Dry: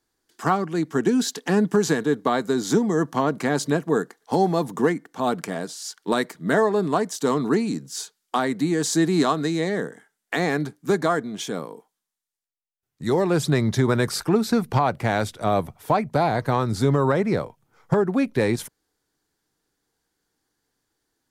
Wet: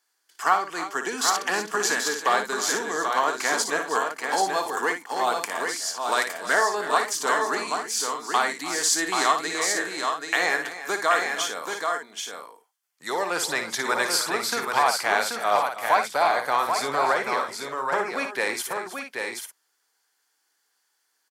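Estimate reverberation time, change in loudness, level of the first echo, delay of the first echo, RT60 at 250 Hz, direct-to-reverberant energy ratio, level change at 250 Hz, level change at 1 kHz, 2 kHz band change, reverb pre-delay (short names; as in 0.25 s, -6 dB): none, -1.5 dB, -8.0 dB, 58 ms, none, none, -14.5 dB, +3.0 dB, +6.0 dB, none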